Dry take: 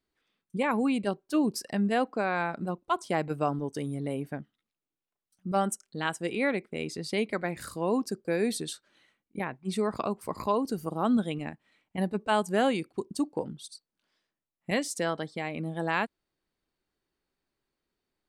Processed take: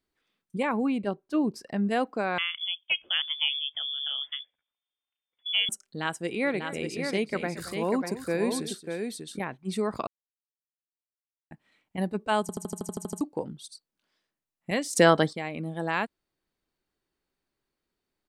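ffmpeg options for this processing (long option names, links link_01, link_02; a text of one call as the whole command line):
ffmpeg -i in.wav -filter_complex "[0:a]asettb=1/sr,asplit=3[link_01][link_02][link_03];[link_01]atrim=end=0.694[link_04];[link_02]atrim=start=0.69:end=1.87,asetpts=PTS-STARTPTS,afade=type=in:duration=0.004:curve=qsin,afade=type=out:start_time=1.176:duration=0.004:curve=qsin,lowpass=frequency=2200:poles=1[link_05];[link_03]atrim=start=1.866[link_06];[link_04][link_05]acrossfade=duration=0.004:curve1=hsin:curve2=qsin[link_07];[link_07][link_06]acrossfade=duration=0.004:curve1=qsin:curve2=hsin,asettb=1/sr,asplit=3[link_08][link_09][link_10];[link_08]atrim=end=2.384[link_11];[link_09]atrim=start=2.38:end=5.69,asetpts=PTS-STARTPTS,afade=type=in:duration=0.004:curve=qsin,afade=type=out:start_time=3.306:duration=0.004:curve=qsin,lowpass=frequency=3100:width_type=q:width=0.5098,lowpass=frequency=3100:width_type=q:width=0.6013,lowpass=frequency=3100:width_type=q:width=0.9,lowpass=frequency=3100:width_type=q:width=2.563,afreqshift=-3600[link_12];[link_10]atrim=start=5.686[link_13];[link_11][link_12]acrossfade=duration=0.004:curve1=hsin:curve2=qsin[link_14];[link_14][link_13]acrossfade=duration=0.004:curve1=qsin:curve2=hsin,asplit=3[link_15][link_16][link_17];[link_15]afade=type=out:start_time=6.42:duration=0.02[link_18];[link_16]aecho=1:1:227|594:0.178|0.531,afade=type=in:start_time=6.42:duration=0.02,afade=type=out:start_time=9.56:duration=0.02[link_19];[link_17]afade=type=in:start_time=9.56:duration=0.02[link_20];[link_18][link_19][link_20]amix=inputs=3:normalize=0,asplit=15[link_21][link_22][link_23][link_24][link_25][link_26][link_27][link_28][link_29][link_30][link_31][link_32][link_33][link_34][link_35];[link_21]atrim=end=10.07,asetpts=PTS-STARTPTS,afade=type=out:start_time=10.066:duration=0.004:curve=hsin[link_36];[link_22]atrim=start=10.07:end=11.51,asetpts=PTS-STARTPTS,volume=0[link_37];[link_23]atrim=start=11.51:end=12.492,asetpts=PTS-STARTPTS,afade=type=in:duration=0.004:curve=hsin[link_38];[link_24]atrim=start=12.408:end=12.492[link_39];[link_25]atrim=start=12.408:end=12.492[link_40];[link_26]atrim=start=12.408:end=12.492[link_41];[link_27]atrim=start=12.408:end=12.492[link_42];[link_28]atrim=start=12.408:end=12.492[link_43];[link_29]atrim=start=12.408:end=12.492[link_44];[link_30]atrim=start=12.408:end=12.492[link_45];[link_31]atrim=start=12.408:end=12.492[link_46];[link_32]atrim=start=12.408:end=12.492[link_47];[link_33]atrim=start=13.208:end=14.932[link_48];[link_34]atrim=start=14.928:end=15.332,asetpts=PTS-STARTPTS,volume=11.5dB[link_49];[link_35]atrim=start=15.328[link_50];[link_36][link_37][link_38]concat=n=3:v=0:a=1[link_51];[link_51][link_39]acrossfade=duration=0.004:curve1=hsin:curve2=hsin[link_52];[link_52][link_40]acrossfade=duration=0.004:curve1=hsin:curve2=hsin[link_53];[link_53][link_41]acrossfade=duration=0.004:curve1=hsin:curve2=hsin[link_54];[link_54][link_42]acrossfade=duration=0.004:curve1=hsin:curve2=hsin[link_55];[link_55][link_43]acrossfade=duration=0.004:curve1=hsin:curve2=hsin[link_56];[link_56][link_44]acrossfade=duration=0.004:curve1=hsin:curve2=hsin[link_57];[link_57][link_45]acrossfade=duration=0.004:curve1=hsin:curve2=hsin[link_58];[link_58][link_46]acrossfade=duration=0.004:curve1=hsin:curve2=hsin[link_59];[link_59][link_47]acrossfade=duration=0.004:curve1=hsin:curve2=hsin[link_60];[link_60][link_48]acrossfade=duration=0.004:curve1=hsin:curve2=hsin[link_61];[link_61][link_49]acrossfade=duration=0.004:curve1=hsin:curve2=hsin[link_62];[link_62][link_50]acrossfade=duration=0.004:curve1=hsin:curve2=hsin" out.wav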